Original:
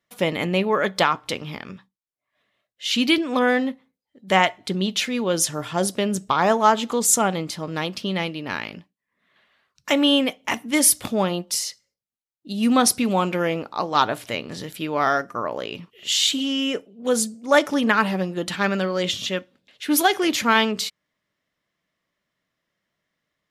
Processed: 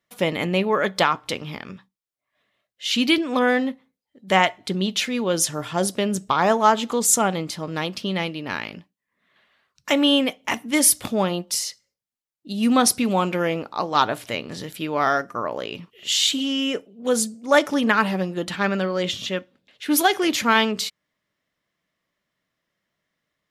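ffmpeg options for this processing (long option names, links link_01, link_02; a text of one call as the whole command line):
ffmpeg -i in.wav -filter_complex "[0:a]asettb=1/sr,asplit=3[link_01][link_02][link_03];[link_01]atrim=end=18.454[link_04];[link_02]atrim=start=18.45:end=19.86,asetpts=PTS-STARTPTS,afade=type=in:duration=0.004:curve=qsin,afade=type=out:start_time=1.406:duration=0.004:curve=qsin,equalizer=frequency=10000:width=0.31:gain=-4[link_05];[link_03]atrim=start=19.856[link_06];[link_04][link_05]acrossfade=duration=0.004:curve1=hsin:curve2=qsin[link_07];[link_07][link_06]acrossfade=duration=0.004:curve1=qsin:curve2=hsin" out.wav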